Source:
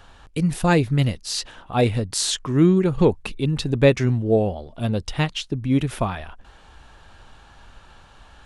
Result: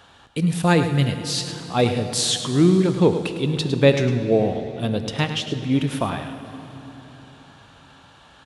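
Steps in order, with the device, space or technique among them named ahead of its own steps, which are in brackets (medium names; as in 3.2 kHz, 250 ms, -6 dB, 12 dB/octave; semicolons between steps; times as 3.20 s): PA in a hall (high-pass 110 Hz 12 dB/octave; peaking EQ 3.5 kHz +4 dB 0.43 oct; delay 106 ms -11 dB; reverberation RT60 3.8 s, pre-delay 14 ms, DRR 9 dB)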